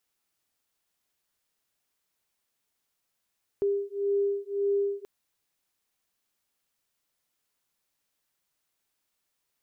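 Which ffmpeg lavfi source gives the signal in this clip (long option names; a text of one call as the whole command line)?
ffmpeg -f lavfi -i "aevalsrc='0.0398*(sin(2*PI*400*t)+sin(2*PI*401.8*t))':duration=1.43:sample_rate=44100" out.wav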